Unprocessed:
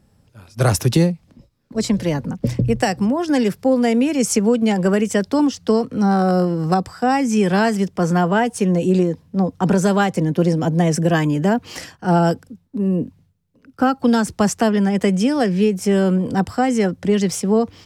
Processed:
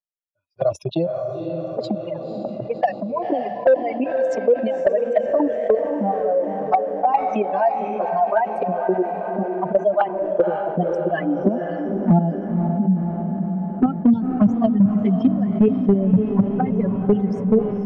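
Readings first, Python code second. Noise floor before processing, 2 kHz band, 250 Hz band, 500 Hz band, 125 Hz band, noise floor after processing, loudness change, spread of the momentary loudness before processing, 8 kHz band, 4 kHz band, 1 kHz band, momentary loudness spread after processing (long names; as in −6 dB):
−58 dBFS, −8.5 dB, −2.5 dB, +0.5 dB, −4.5 dB, −32 dBFS, −2.0 dB, 5 LU, below −25 dB, below −15 dB, 0.0 dB, 8 LU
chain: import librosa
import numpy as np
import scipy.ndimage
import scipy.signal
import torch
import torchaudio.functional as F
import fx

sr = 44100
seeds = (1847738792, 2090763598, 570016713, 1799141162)

p1 = fx.bin_expand(x, sr, power=3.0)
p2 = fx.peak_eq(p1, sr, hz=150.0, db=4.5, octaves=0.59)
p3 = fx.level_steps(p2, sr, step_db=20)
p4 = p2 + F.gain(torch.from_numpy(p3), 0.5).numpy()
p5 = fx.transient(p4, sr, attack_db=5, sustain_db=-8)
p6 = fx.env_flanger(p5, sr, rest_ms=11.5, full_db=-13.0)
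p7 = fx.filter_sweep_highpass(p6, sr, from_hz=620.0, to_hz=110.0, start_s=10.09, end_s=13.65, q=5.6)
p8 = np.clip(10.0 ** (5.0 / 20.0) * p7, -1.0, 1.0) / 10.0 ** (5.0 / 20.0)
p9 = fx.spacing_loss(p8, sr, db_at_10k=44)
p10 = p9 + fx.echo_diffused(p9, sr, ms=528, feedback_pct=53, wet_db=-11.5, dry=0)
p11 = fx.env_flatten(p10, sr, amount_pct=50)
y = F.gain(torch.from_numpy(p11), -3.0).numpy()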